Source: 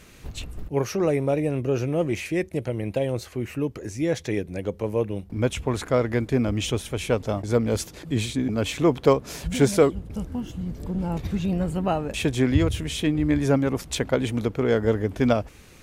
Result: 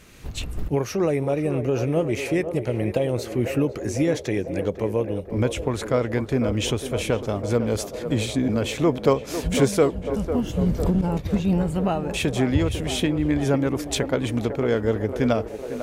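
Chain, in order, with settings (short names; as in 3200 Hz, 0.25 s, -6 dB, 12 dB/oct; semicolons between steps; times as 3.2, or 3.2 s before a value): recorder AGC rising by 13 dB/s; on a send: narrowing echo 0.5 s, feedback 78%, band-pass 600 Hz, level -8 dB; 11.01–11.5 on the sum: expander -17 dBFS; gain -1 dB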